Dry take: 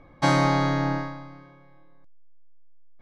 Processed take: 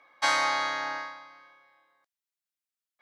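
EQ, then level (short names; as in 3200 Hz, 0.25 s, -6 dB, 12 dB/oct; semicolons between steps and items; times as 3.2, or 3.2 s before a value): HPF 1200 Hz 12 dB/oct; +2.5 dB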